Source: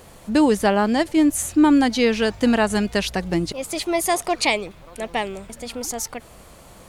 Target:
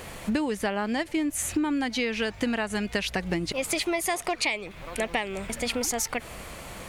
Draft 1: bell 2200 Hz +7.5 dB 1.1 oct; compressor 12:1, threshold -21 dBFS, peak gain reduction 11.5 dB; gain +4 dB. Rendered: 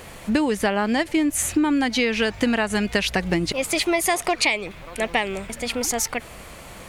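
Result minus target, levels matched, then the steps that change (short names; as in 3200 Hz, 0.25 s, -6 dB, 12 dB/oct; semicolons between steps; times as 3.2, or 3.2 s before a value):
compressor: peak gain reduction -6.5 dB
change: compressor 12:1, threshold -28 dBFS, peak gain reduction 18 dB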